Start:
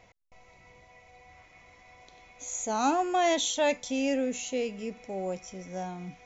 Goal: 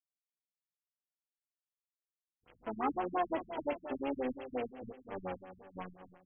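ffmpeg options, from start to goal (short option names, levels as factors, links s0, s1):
-filter_complex "[0:a]asplit=3[s0][s1][s2];[s1]asetrate=55563,aresample=44100,atempo=0.793701,volume=0.158[s3];[s2]asetrate=66075,aresample=44100,atempo=0.66742,volume=0.501[s4];[s0][s3][s4]amix=inputs=3:normalize=0,acrusher=bits=4:mix=0:aa=0.5,asplit=2[s5][s6];[s6]adelay=28,volume=0.316[s7];[s5][s7]amix=inputs=2:normalize=0,asplit=2[s8][s9];[s9]aecho=0:1:242|484|726|968|1210|1452:0.251|0.143|0.0816|0.0465|0.0265|0.0151[s10];[s8][s10]amix=inputs=2:normalize=0,afftfilt=real='re*lt(b*sr/1024,200*pow(3400/200,0.5+0.5*sin(2*PI*5.7*pts/sr)))':imag='im*lt(b*sr/1024,200*pow(3400/200,0.5+0.5*sin(2*PI*5.7*pts/sr)))':win_size=1024:overlap=0.75,volume=0.398"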